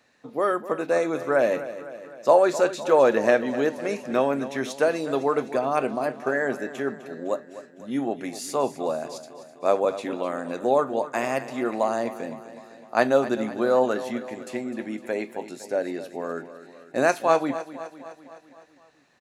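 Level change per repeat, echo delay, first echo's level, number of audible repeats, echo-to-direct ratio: -4.5 dB, 0.254 s, -14.0 dB, 5, -12.0 dB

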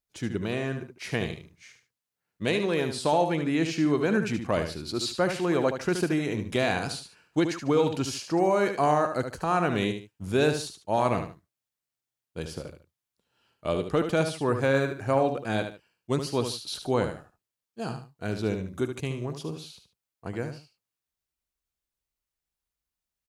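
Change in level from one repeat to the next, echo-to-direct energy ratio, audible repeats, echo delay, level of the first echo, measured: -11.0 dB, -7.5 dB, 2, 74 ms, -8.0 dB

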